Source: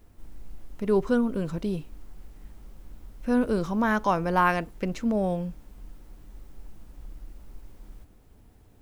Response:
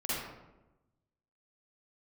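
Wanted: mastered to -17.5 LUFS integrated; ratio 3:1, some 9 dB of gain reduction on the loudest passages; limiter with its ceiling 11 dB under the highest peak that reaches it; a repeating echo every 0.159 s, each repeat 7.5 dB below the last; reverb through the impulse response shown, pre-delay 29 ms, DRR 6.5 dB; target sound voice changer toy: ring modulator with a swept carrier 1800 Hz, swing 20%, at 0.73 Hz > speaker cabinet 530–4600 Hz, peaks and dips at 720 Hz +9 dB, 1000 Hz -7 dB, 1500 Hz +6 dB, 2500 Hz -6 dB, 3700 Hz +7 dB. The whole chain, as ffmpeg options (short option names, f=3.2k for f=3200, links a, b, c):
-filter_complex "[0:a]acompressor=threshold=-30dB:ratio=3,alimiter=level_in=5dB:limit=-24dB:level=0:latency=1,volume=-5dB,aecho=1:1:159|318|477|636|795:0.422|0.177|0.0744|0.0312|0.0131,asplit=2[a][b];[1:a]atrim=start_sample=2205,adelay=29[c];[b][c]afir=irnorm=-1:irlink=0,volume=-12.5dB[d];[a][d]amix=inputs=2:normalize=0,aeval=exprs='val(0)*sin(2*PI*1800*n/s+1800*0.2/0.73*sin(2*PI*0.73*n/s))':c=same,highpass=530,equalizer=f=720:t=q:w=4:g=9,equalizer=f=1k:t=q:w=4:g=-7,equalizer=f=1.5k:t=q:w=4:g=6,equalizer=f=2.5k:t=q:w=4:g=-6,equalizer=f=3.7k:t=q:w=4:g=7,lowpass=f=4.6k:w=0.5412,lowpass=f=4.6k:w=1.3066,volume=17dB"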